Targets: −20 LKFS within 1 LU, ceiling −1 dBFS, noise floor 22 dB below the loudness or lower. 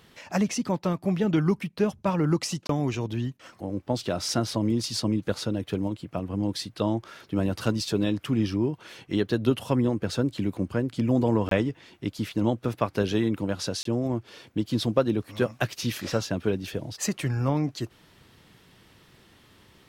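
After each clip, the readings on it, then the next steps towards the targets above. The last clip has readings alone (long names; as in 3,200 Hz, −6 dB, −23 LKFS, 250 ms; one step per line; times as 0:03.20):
number of dropouts 3; longest dropout 23 ms; integrated loudness −27.5 LKFS; sample peak −9.0 dBFS; target loudness −20.0 LKFS
→ repair the gap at 0:02.67/0:11.49/0:13.83, 23 ms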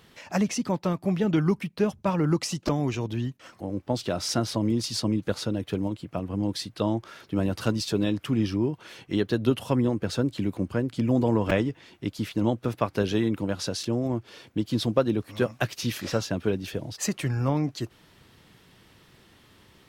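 number of dropouts 0; integrated loudness −27.5 LKFS; sample peak −9.0 dBFS; target loudness −20.0 LKFS
→ level +7.5 dB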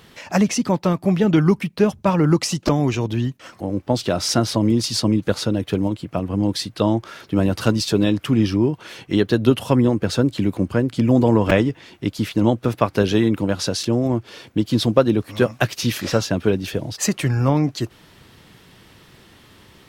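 integrated loudness −20.0 LKFS; sample peak −1.5 dBFS; background noise floor −50 dBFS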